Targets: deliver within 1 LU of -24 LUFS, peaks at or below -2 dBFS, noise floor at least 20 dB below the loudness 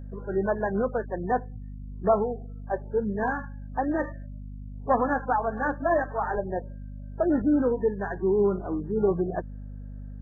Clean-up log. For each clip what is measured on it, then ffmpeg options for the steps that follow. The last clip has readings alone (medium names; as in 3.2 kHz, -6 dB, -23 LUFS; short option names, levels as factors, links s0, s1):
hum 50 Hz; highest harmonic 250 Hz; hum level -36 dBFS; loudness -27.5 LUFS; peak level -11.0 dBFS; loudness target -24.0 LUFS
-> -af "bandreject=f=50:t=h:w=6,bandreject=f=100:t=h:w=6,bandreject=f=150:t=h:w=6,bandreject=f=200:t=h:w=6,bandreject=f=250:t=h:w=6"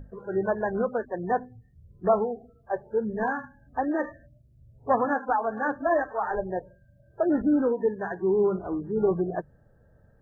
hum not found; loudness -27.5 LUFS; peak level -10.5 dBFS; loudness target -24.0 LUFS
-> -af "volume=1.5"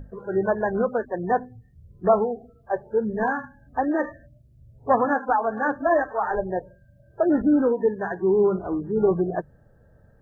loudness -24.0 LUFS; peak level -7.0 dBFS; noise floor -56 dBFS